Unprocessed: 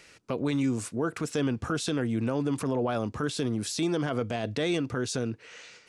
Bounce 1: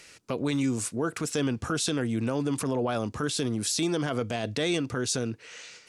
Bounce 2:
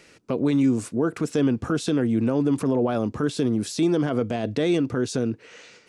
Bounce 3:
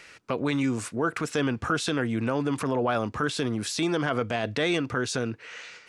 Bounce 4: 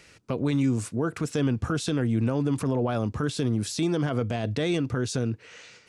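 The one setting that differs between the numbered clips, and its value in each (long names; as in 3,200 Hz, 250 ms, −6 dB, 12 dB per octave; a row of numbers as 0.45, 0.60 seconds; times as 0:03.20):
parametric band, centre frequency: 13,000, 280, 1,600, 89 Hertz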